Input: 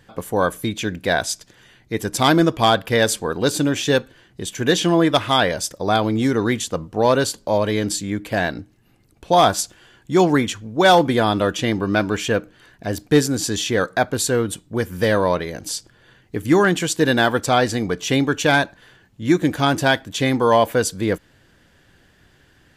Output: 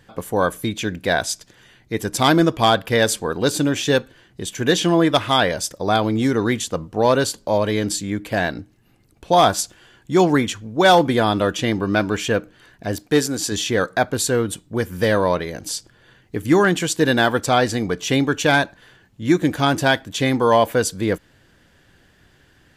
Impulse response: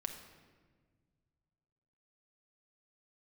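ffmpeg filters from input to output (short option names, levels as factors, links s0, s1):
-filter_complex "[0:a]asettb=1/sr,asplit=3[s0][s1][s2];[s0]atrim=end=12.964[s3];[s1]atrim=start=12.96:end=13.52,asetpts=PTS-STARTPTS,afade=t=in:d=0.004:c=qsin,afade=t=out:st=0.556:d=0.004:c=qsin,lowshelf=f=190:g=-9[s4];[s2]atrim=start=13.516[s5];[s3][s4]acrossfade=d=0.004:c1=hsin:c2=qsin[s6];[s6][s5]acrossfade=d=0.004:c1=qsin:c2=hsin"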